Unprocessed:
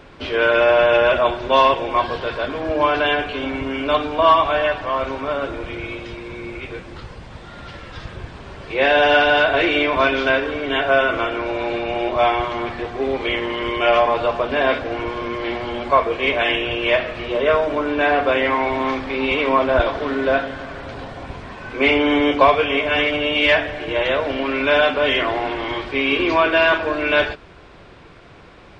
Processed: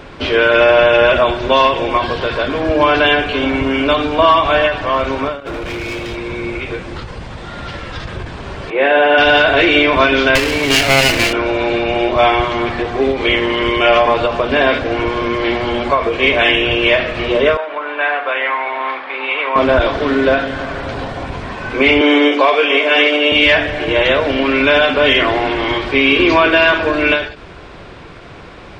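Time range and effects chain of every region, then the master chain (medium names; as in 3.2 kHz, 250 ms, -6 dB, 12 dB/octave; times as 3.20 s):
5.40–6.16 s: compressor with a negative ratio -29 dBFS, ratio -0.5 + hard clipper -29.5 dBFS
8.70–9.18 s: high-pass 290 Hz + modulation noise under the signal 30 dB + distance through air 490 m
10.35–11.33 s: comb filter that takes the minimum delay 0.41 ms + treble shelf 3.1 kHz +11 dB
17.57–19.56 s: high-pass 900 Hz + distance through air 390 m
22.01–23.32 s: high-pass 300 Hz 24 dB/octave + doubling 20 ms -12.5 dB
whole clip: dynamic bell 820 Hz, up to -4 dB, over -27 dBFS, Q 0.76; loudness maximiser +10 dB; endings held to a fixed fall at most 110 dB/s; trim -1 dB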